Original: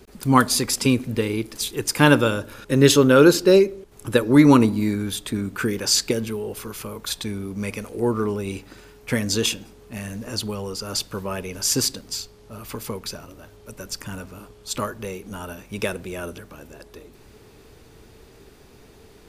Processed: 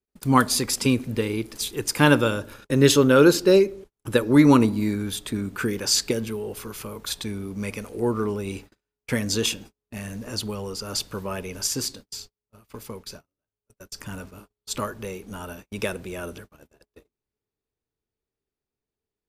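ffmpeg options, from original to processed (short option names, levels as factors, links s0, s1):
-filter_complex "[0:a]asettb=1/sr,asplit=3[s0][s1][s2];[s0]atrim=end=11.674[s3];[s1]atrim=start=11.67:end=14,asetpts=PTS-STARTPTS,afade=t=in:d=0.004:c=qsin,afade=t=out:st=2.326:d=0.004:c=qsin,flanger=delay=5.7:depth=2.1:regen=-81:speed=1.6:shape=triangular[s4];[s2]atrim=start=13.996[s5];[s3][s4]acrossfade=d=0.004:c1=hsin:c2=qsin[s6];[s6][s5]acrossfade=d=0.004:c1=qsin:c2=hsin,agate=range=0.0112:threshold=0.0112:ratio=16:detection=peak,volume=0.794"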